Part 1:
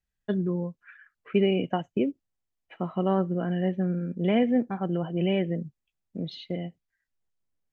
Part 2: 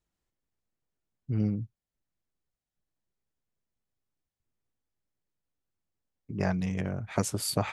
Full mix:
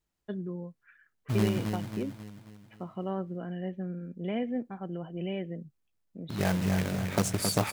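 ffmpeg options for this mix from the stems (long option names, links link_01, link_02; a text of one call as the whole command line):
ffmpeg -i stem1.wav -i stem2.wav -filter_complex "[0:a]volume=-9dB[link_01];[1:a]acrusher=bits=2:mode=log:mix=0:aa=0.000001,volume=0dB,asplit=2[link_02][link_03];[link_03]volume=-5.5dB,aecho=0:1:269|538|807|1076|1345|1614|1883:1|0.5|0.25|0.125|0.0625|0.0312|0.0156[link_04];[link_01][link_02][link_04]amix=inputs=3:normalize=0" out.wav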